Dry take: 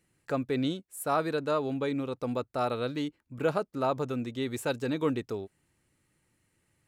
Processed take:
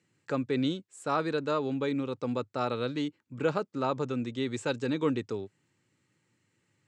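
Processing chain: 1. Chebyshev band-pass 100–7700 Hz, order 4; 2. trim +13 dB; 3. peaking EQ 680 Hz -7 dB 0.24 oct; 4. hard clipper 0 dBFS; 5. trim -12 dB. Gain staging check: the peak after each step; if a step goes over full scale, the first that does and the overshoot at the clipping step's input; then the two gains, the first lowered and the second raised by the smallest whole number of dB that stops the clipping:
-14.5 dBFS, -1.5 dBFS, -2.5 dBFS, -2.5 dBFS, -14.5 dBFS; nothing clips

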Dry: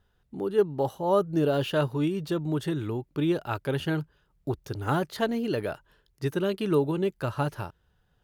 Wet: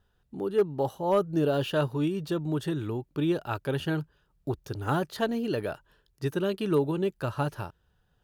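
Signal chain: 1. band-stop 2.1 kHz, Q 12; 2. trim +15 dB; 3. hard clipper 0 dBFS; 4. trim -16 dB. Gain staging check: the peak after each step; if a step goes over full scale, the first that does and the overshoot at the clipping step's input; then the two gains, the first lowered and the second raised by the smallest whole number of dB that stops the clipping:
-12.0 dBFS, +3.0 dBFS, 0.0 dBFS, -16.0 dBFS; step 2, 3.0 dB; step 2 +12 dB, step 4 -13 dB

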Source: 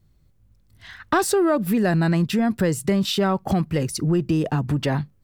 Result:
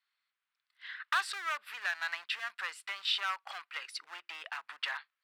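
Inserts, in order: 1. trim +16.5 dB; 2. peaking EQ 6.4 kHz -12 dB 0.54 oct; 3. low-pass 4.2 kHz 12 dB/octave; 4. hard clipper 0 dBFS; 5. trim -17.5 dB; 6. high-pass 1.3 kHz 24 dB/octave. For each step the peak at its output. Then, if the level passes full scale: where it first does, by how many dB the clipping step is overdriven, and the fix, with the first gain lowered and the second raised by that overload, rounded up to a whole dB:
+7.5 dBFS, +7.0 dBFS, +7.0 dBFS, 0.0 dBFS, -17.5 dBFS, -18.0 dBFS; step 1, 7.0 dB; step 1 +9.5 dB, step 5 -10.5 dB

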